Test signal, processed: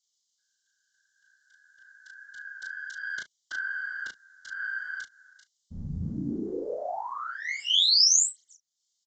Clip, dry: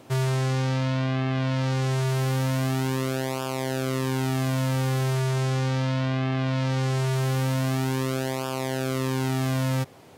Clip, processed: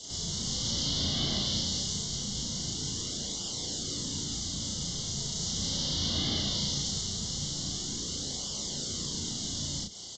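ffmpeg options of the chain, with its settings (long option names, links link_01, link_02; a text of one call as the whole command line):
ffmpeg -i in.wav -filter_complex "[0:a]aexciter=amount=8.8:drive=8.8:freq=2700,bass=frequency=250:gain=5,treble=frequency=4000:gain=5,acrossover=split=120|310[link_01][link_02][link_03];[link_01]acompressor=threshold=-39dB:ratio=4[link_04];[link_02]acompressor=threshold=-26dB:ratio=4[link_05];[link_03]acompressor=threshold=-14dB:ratio=4[link_06];[link_04][link_05][link_06]amix=inputs=3:normalize=0,alimiter=limit=-9.5dB:level=0:latency=1:release=128,afftfilt=real='hypot(re,im)*cos(2*PI*random(0))':imag='hypot(re,im)*sin(2*PI*random(1))':win_size=512:overlap=0.75,asplit=2[link_07][link_08];[link_08]aecho=0:1:21|35:0.316|0.596[link_09];[link_07][link_09]amix=inputs=2:normalize=0,adynamicequalizer=threshold=0.00891:dfrequency=1300:dqfactor=1.6:tfrequency=1300:tqfactor=1.6:attack=5:release=100:ratio=0.375:range=2:mode=cutabove:tftype=bell,asuperstop=centerf=2500:order=12:qfactor=3.8,asplit=2[link_10][link_11];[link_11]adelay=35,volume=-12dB[link_12];[link_10][link_12]amix=inputs=2:normalize=0,aresample=16000,aresample=44100,volume=-4dB" out.wav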